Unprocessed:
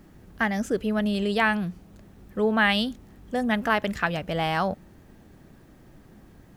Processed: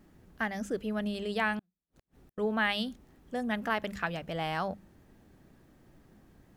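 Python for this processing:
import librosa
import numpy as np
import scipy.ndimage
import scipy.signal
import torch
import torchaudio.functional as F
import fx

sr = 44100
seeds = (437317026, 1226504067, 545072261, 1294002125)

y = fx.hum_notches(x, sr, base_hz=50, count=4)
y = fx.wow_flutter(y, sr, seeds[0], rate_hz=2.1, depth_cents=22.0)
y = fx.gate_flip(y, sr, shuts_db=-41.0, range_db=-40, at=(1.59, 2.38))
y = y * 10.0 ** (-7.5 / 20.0)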